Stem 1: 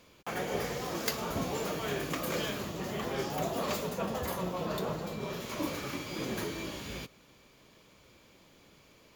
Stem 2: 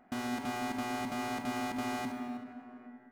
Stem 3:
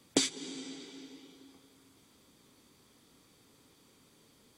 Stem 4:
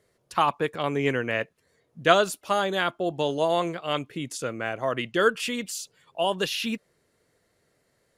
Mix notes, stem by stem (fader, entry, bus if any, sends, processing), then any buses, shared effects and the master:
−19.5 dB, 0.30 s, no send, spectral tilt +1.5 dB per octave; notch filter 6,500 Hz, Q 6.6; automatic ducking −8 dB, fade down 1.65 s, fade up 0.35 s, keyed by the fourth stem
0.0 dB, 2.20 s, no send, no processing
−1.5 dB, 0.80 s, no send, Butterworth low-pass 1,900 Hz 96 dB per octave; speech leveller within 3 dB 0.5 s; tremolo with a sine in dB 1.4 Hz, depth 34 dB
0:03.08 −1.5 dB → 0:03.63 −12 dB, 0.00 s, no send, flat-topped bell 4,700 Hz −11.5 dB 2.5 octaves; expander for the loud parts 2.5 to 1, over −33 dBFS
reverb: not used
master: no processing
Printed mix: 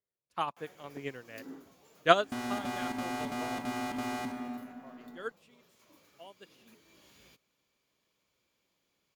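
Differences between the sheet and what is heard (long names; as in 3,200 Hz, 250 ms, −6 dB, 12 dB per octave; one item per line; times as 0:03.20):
stem 1: missing notch filter 6,500 Hz, Q 6.6
stem 4: missing flat-topped bell 4,700 Hz −11.5 dB 2.5 octaves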